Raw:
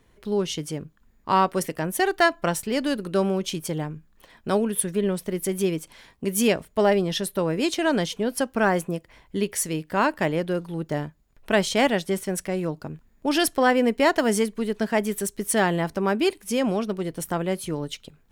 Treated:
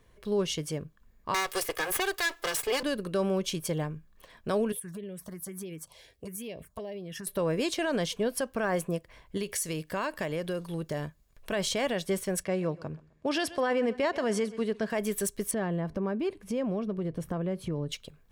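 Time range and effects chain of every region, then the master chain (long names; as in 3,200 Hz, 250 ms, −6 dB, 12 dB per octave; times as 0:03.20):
0:01.34–0:02.83: lower of the sound and its delayed copy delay 2.4 ms + spectral tilt +2.5 dB per octave + multiband upward and downward compressor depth 100%
0:04.72–0:07.27: phaser swept by the level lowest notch 150 Hz, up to 1,400 Hz, full sweep at −18 dBFS + downward compressor 8 to 1, threshold −33 dBFS + high-pass filter 45 Hz
0:09.37–0:11.52: parametric band 9,900 Hz +6 dB 2.8 octaves + downward compressor, threshold −25 dBFS
0:12.43–0:14.90: high-pass filter 58 Hz + high-frequency loss of the air 63 metres + repeating echo 129 ms, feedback 33%, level −21 dB
0:15.51–0:17.92: low-pass filter 1,900 Hz 6 dB per octave + parametric band 150 Hz +8 dB 2.9 octaves + downward compressor 3 to 1, threshold −26 dBFS
whole clip: comb filter 1.8 ms, depth 32%; brickwall limiter −17 dBFS; level −2.5 dB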